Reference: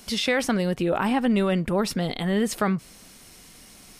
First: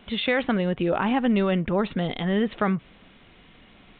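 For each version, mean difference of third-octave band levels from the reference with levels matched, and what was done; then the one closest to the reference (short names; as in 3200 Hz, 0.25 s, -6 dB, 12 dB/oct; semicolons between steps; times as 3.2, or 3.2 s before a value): 5.0 dB: downsampling 8000 Hz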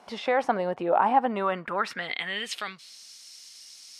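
8.0 dB: band-pass sweep 820 Hz -> 5100 Hz, 1.23–3.03; gain +8 dB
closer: first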